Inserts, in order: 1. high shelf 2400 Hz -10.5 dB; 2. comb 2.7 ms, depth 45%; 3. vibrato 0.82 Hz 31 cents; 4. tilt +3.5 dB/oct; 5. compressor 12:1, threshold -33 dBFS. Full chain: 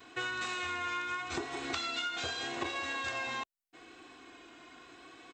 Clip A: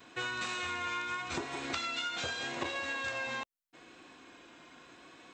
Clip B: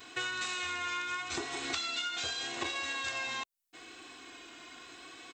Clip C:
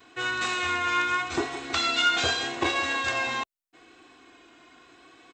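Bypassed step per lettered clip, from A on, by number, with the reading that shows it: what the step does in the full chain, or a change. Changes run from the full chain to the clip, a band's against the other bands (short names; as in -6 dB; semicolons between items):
2, 125 Hz band +2.0 dB; 1, 8 kHz band +7.5 dB; 5, mean gain reduction 5.5 dB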